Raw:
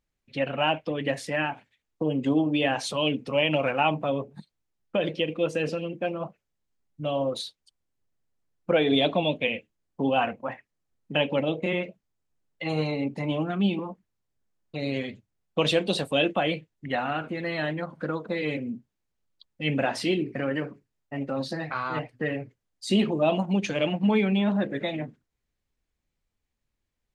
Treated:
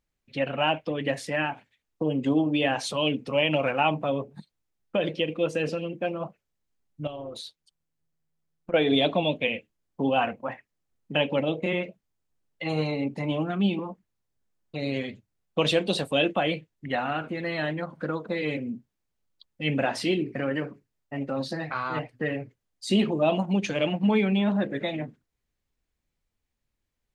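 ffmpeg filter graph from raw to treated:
ffmpeg -i in.wav -filter_complex "[0:a]asettb=1/sr,asplit=3[link_01][link_02][link_03];[link_01]atrim=end=7.074[link_04];[link_02]atrim=start=7.07:end=8.74,asetpts=PTS-STARTPTS,afade=type=in:duration=0.004:curve=qsin,afade=type=out:start_time=1.666:duration=0.004:curve=qsin,acompressor=threshold=-32dB:ratio=6:attack=3.2:release=140:knee=1:detection=peak,tremolo=f=160:d=0.519[link_05];[link_03]atrim=start=8.736[link_06];[link_04][link_05]acrossfade=duration=0.004:curve1=hsin:curve2=qsin[link_07];[link_07][link_06]acrossfade=duration=0.004:curve1=qsin:curve2=hsin" out.wav

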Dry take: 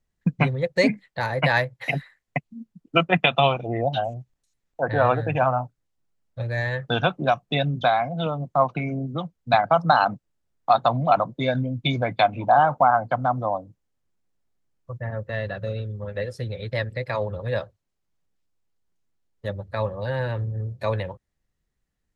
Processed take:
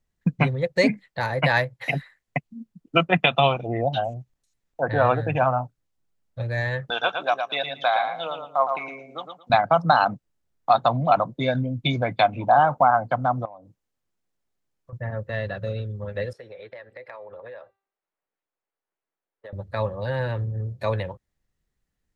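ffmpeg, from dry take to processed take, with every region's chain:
ffmpeg -i in.wav -filter_complex "[0:a]asettb=1/sr,asplit=3[link_01][link_02][link_03];[link_01]atrim=end=6.904[link_04];[link_02]atrim=start=6.9:end=9.5,asetpts=PTS-STARTPTS,afade=type=in:duration=0.004:curve=qsin,afade=type=out:start_time=2.596:duration=0.004:curve=qsin,highpass=630,aecho=1:1:113|226|339:0.501|0.1|0.02,atrim=end_sample=114660[link_05];[link_03]atrim=start=9.496[link_06];[link_04][link_05]acrossfade=duration=0.004:curve1=hsin:curve2=qsin[link_07];[link_07][link_06]acrossfade=duration=0.004:curve1=qsin:curve2=hsin,asettb=1/sr,asplit=3[link_08][link_09][link_10];[link_08]atrim=end=13.454[link_11];[link_09]atrim=start=13.45:end=14.93,asetpts=PTS-STARTPTS,afade=type=in:duration=0.004:curve=qsin,afade=type=out:start_time=1.476:duration=0.004:curve=qsin,acompressor=threshold=-38dB:ratio=8:attack=3.2:release=140:knee=1:detection=peak,lowshelf=frequency=220:gain=-6.5[link_12];[link_10]atrim=start=14.926[link_13];[link_11][link_12]acrossfade=duration=0.004:curve1=hsin:curve2=qsin[link_14];[link_14][link_13]acrossfade=duration=0.004:curve1=qsin:curve2=hsin,asettb=1/sr,asplit=3[link_15][link_16][link_17];[link_15]atrim=end=16.334[link_18];[link_16]atrim=start=16.33:end=19.53,asetpts=PTS-STARTPTS,afade=type=in:duration=0.004:curve=qsin,afade=type=out:start_time=3.196:duration=0.004:curve=qsin,acrossover=split=360 2600:gain=0.0631 1 0.141[link_19][link_20][link_21];[link_19][link_20][link_21]amix=inputs=3:normalize=0,acompressor=threshold=-36dB:ratio=16:attack=3.2:release=140:knee=1:detection=peak,bandreject=frequency=392.4:width_type=h:width=4,bandreject=frequency=784.8:width_type=h:width=4,bandreject=frequency=1177.2:width_type=h:width=4,bandreject=frequency=1569.6:width_type=h:width=4,bandreject=frequency=1962:width_type=h:width=4,bandreject=frequency=2354.4:width_type=h:width=4,bandreject=frequency=2746.8:width_type=h:width=4,bandreject=frequency=3139.2:width_type=h:width=4,bandreject=frequency=3531.6:width_type=h:width=4,bandreject=frequency=3924:width_type=h:width=4,bandreject=frequency=4316.4:width_type=h:width=4,bandreject=frequency=4708.8:width_type=h:width=4,bandreject=frequency=5101.2:width_type=h:width=4,bandreject=frequency=5493.6:width_type=h:width=4,bandreject=frequency=5886:width_type=h:width=4,bandreject=frequency=6278.4:width_type=h:width=4,bandreject=frequency=6670.8:width_type=h:width=4,bandreject=frequency=7063.2:width_type=h:width=4,bandreject=frequency=7455.6:width_type=h:width=4,bandreject=frequency=7848:width_type=h:width=4,bandreject=frequency=8240.4:width_type=h:width=4,bandreject=frequency=8632.8:width_type=h:width=4,bandreject=frequency=9025.2:width_type=h:width=4,bandreject=frequency=9417.6:width_type=h:width=4,bandreject=frequency=9810:width_type=h:width=4,bandreject=frequency=10202.4:width_type=h:width=4,bandreject=frequency=10594.8:width_type=h:width=4,bandreject=frequency=10987.2:width_type=h:width=4,bandreject=frequency=11379.6:width_type=h:width=4,bandreject=frequency=11772:width_type=h:width=4,bandreject=frequency=12164.4:width_type=h:width=4,bandreject=frequency=12556.8:width_type=h:width=4,bandreject=frequency=12949.2:width_type=h:width=4[link_22];[link_17]atrim=start=19.526[link_23];[link_18][link_22]acrossfade=duration=0.004:curve1=hsin:curve2=qsin[link_24];[link_24][link_23]acrossfade=duration=0.004:curve1=qsin:curve2=hsin" out.wav

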